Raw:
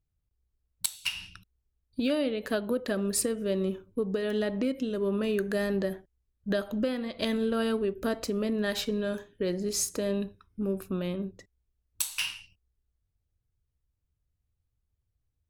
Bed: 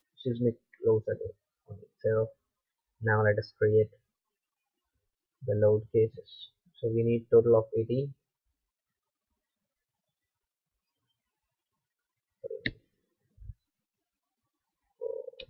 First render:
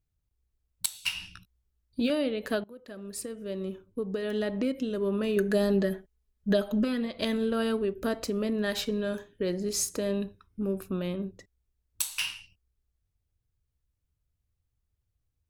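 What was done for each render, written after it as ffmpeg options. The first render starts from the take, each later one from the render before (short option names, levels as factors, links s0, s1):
-filter_complex "[0:a]asettb=1/sr,asplit=3[s0][s1][s2];[s0]atrim=end=0.934[s3];[s1]atrim=start=0.93:end=2.1,asetpts=PTS-STARTPTS,afade=t=in:d=0.004:c=qsin,afade=t=out:st=1.166:d=0.004:c=qsin,asplit=2[s4][s5];[s5]adelay=17,volume=0.501[s6];[s4][s6]amix=inputs=2:normalize=0,atrim=end_sample=51597[s7];[s2]atrim=start=2.096[s8];[s3][s7]acrossfade=d=0.004:c1=hsin:c2=qsin[s9];[s9][s8]acrossfade=d=0.004:c1=qsin:c2=hsin,asettb=1/sr,asplit=3[s10][s11][s12];[s10]atrim=end=5.364[s13];[s11]atrim=start=5.36:end=7.06,asetpts=PTS-STARTPTS,afade=t=in:d=0.004:c=qsin,afade=t=out:st=1.696:d=0.004:c=qsin,aecho=1:1:4.7:0.72,atrim=end_sample=74970[s14];[s12]atrim=start=7.056[s15];[s13][s14]acrossfade=d=0.004:c1=hsin:c2=qsin[s16];[s16][s15]acrossfade=d=0.004:c1=qsin:c2=hsin,asplit=2[s17][s18];[s17]atrim=end=2.64,asetpts=PTS-STARTPTS,afade=t=out:st=2.636:d=0.004:c=hsin:silence=0.0749894[s19];[s18]atrim=start=2.64,asetpts=PTS-STARTPTS,afade=t=in:d=1.99:silence=0.0749894[s20];[s19][s20]concat=n=2:v=0:a=1"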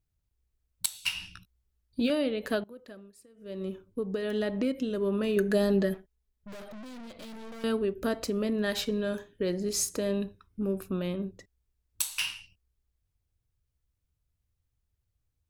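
-filter_complex "[0:a]asettb=1/sr,asplit=3[s0][s1][s2];[s0]atrim=end=5.944[s3];[s1]atrim=start=5.94:end=7.64,asetpts=PTS-STARTPTS,afade=t=in:d=0.004:c=qsin,afade=t=out:st=1.696:d=0.004:c=qsin,aeval=exprs='(tanh(141*val(0)+0.6)-tanh(0.6))/141':c=same[s4];[s2]atrim=start=7.636[s5];[s3][s4]acrossfade=d=0.004:c1=hsin:c2=qsin[s6];[s6][s5]acrossfade=d=0.004:c1=qsin:c2=hsin,asplit=3[s7][s8][s9];[s7]atrim=end=3.13,asetpts=PTS-STARTPTS,afade=t=out:st=2.81:d=0.32:silence=0.1[s10];[s8]atrim=start=3.13:end=3.34,asetpts=PTS-STARTPTS,volume=0.1[s11];[s9]atrim=start=3.34,asetpts=PTS-STARTPTS,afade=t=in:d=0.32:silence=0.1[s12];[s10][s11][s12]concat=n=3:v=0:a=1"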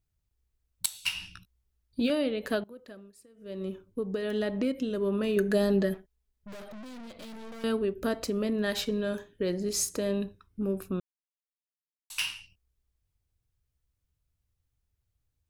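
-filter_complex "[0:a]asplit=3[s0][s1][s2];[s0]atrim=end=11,asetpts=PTS-STARTPTS,afade=t=out:st=10.996:d=0.004:c=hsin[s3];[s1]atrim=start=11:end=12.1,asetpts=PTS-STARTPTS,volume=0[s4];[s2]atrim=start=12.1,asetpts=PTS-STARTPTS,afade=t=in:d=0.004:c=hsin[s5];[s3][s4][s5]concat=n=3:v=0:a=1"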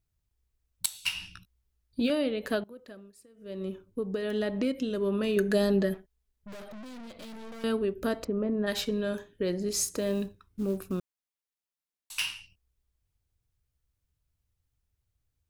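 -filter_complex "[0:a]asettb=1/sr,asplit=3[s0][s1][s2];[s0]atrim=end=4.564[s3];[s1]atrim=start=4.56:end=5.7,asetpts=PTS-STARTPTS,afade=t=in:d=0.004:c=qsin,afade=t=out:st=1.136:d=0.004:c=qsin,equalizer=f=4800:w=0.59:g=3[s4];[s2]atrim=start=5.696[s5];[s3][s4]acrossfade=d=0.004:c1=hsin:c2=qsin[s6];[s6][s5]acrossfade=d=0.004:c1=qsin:c2=hsin,asplit=3[s7][s8][s9];[s7]afade=t=out:st=8.23:d=0.02[s10];[s8]lowpass=1200,afade=t=in:st=8.23:d=0.02,afade=t=out:st=8.66:d=0.02[s11];[s9]afade=t=in:st=8.66:d=0.02[s12];[s10][s11][s12]amix=inputs=3:normalize=0,asettb=1/sr,asplit=3[s13][s14][s15];[s13]atrim=end=9.944[s16];[s14]atrim=start=9.94:end=12.23,asetpts=PTS-STARTPTS,afade=t=in:d=0.004:c=qsin,afade=t=out:st=2.286:d=0.004:c=qsin,acrusher=bits=7:mode=log:mix=0:aa=0.000001[s17];[s15]atrim=start=12.226[s18];[s16][s17]acrossfade=d=0.004:c1=hsin:c2=qsin[s19];[s19][s18]acrossfade=d=0.004:c1=qsin:c2=hsin"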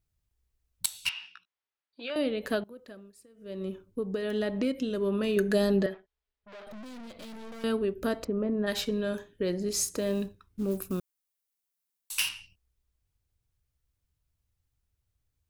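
-filter_complex "[0:a]asettb=1/sr,asplit=3[s0][s1][s2];[s0]atrim=end=1.094[s3];[s1]atrim=start=1.09:end=2.16,asetpts=PTS-STARTPTS,afade=t=in:d=0.004:c=qsin,afade=t=out:st=1.066:d=0.004:c=qsin,highpass=780,lowpass=3100[s4];[s2]atrim=start=2.156[s5];[s3][s4]acrossfade=d=0.004:c1=hsin:c2=qsin[s6];[s6][s5]acrossfade=d=0.004:c1=qsin:c2=hsin,asettb=1/sr,asplit=3[s7][s8][s9];[s7]atrim=end=5.864[s10];[s8]atrim=start=5.86:end=6.67,asetpts=PTS-STARTPTS,afade=t=in:d=0.004:c=qsin,afade=t=out:st=0.806:d=0.004:c=qsin,acrossover=split=380 4800:gain=0.2 1 0.0708[s11][s12][s13];[s11][s12][s13]amix=inputs=3:normalize=0[s14];[s9]atrim=start=6.666[s15];[s10][s14]acrossfade=d=0.004:c1=hsin:c2=qsin[s16];[s16][s15]acrossfade=d=0.004:c1=qsin:c2=hsin,asettb=1/sr,asplit=3[s17][s18][s19];[s17]atrim=end=10.714[s20];[s18]atrim=start=10.71:end=12.29,asetpts=PTS-STARTPTS,afade=t=in:d=0.004:c=qsin,afade=t=out:st=1.576:d=0.004:c=qsin,highshelf=f=7700:g=11.5[s21];[s19]atrim=start=12.286[s22];[s20][s21]acrossfade=d=0.004:c1=hsin:c2=qsin[s23];[s23][s22]acrossfade=d=0.004:c1=qsin:c2=hsin"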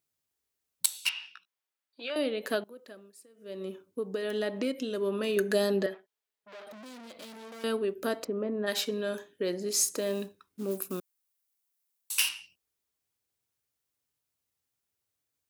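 -af "highpass=270,highshelf=f=5300:g=4.5"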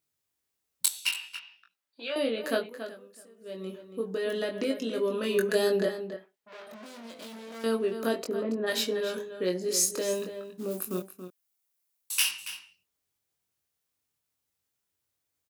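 -filter_complex "[0:a]asplit=2[s0][s1];[s1]adelay=22,volume=0.668[s2];[s0][s2]amix=inputs=2:normalize=0,asplit=2[s3][s4];[s4]adelay=279.9,volume=0.316,highshelf=f=4000:g=-6.3[s5];[s3][s5]amix=inputs=2:normalize=0"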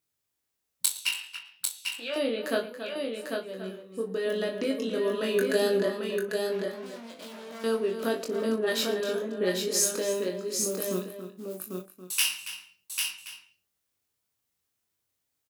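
-filter_complex "[0:a]asplit=2[s0][s1];[s1]adelay=38,volume=0.266[s2];[s0][s2]amix=inputs=2:normalize=0,aecho=1:1:113|796:0.112|0.596"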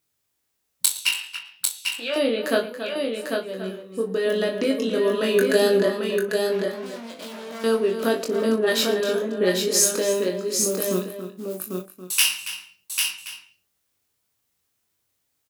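-af "volume=2.11,alimiter=limit=0.708:level=0:latency=1"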